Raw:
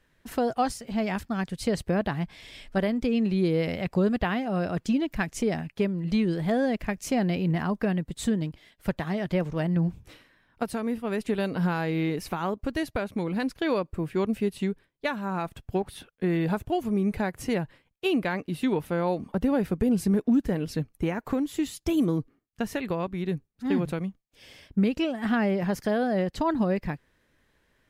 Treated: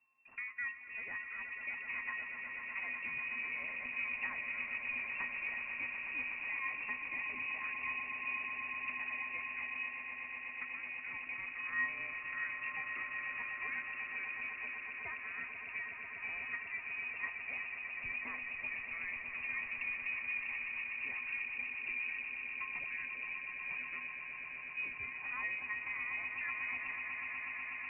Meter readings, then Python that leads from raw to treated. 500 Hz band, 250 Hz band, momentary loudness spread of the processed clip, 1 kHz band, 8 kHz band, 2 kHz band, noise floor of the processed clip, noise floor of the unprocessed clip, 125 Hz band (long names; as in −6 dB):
−33.0 dB, −36.0 dB, 4 LU, −15.0 dB, below −35 dB, +1.5 dB, −47 dBFS, −69 dBFS, below −35 dB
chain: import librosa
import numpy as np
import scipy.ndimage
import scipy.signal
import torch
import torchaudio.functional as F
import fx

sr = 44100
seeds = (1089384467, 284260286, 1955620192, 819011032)

y = fx.peak_eq(x, sr, hz=810.0, db=5.0, octaves=0.27)
y = fx.comb_fb(y, sr, f0_hz=820.0, decay_s=0.35, harmonics='all', damping=0.0, mix_pct=90)
y = fx.echo_swell(y, sr, ms=123, loudest=8, wet_db=-10.0)
y = fx.freq_invert(y, sr, carrier_hz=2700)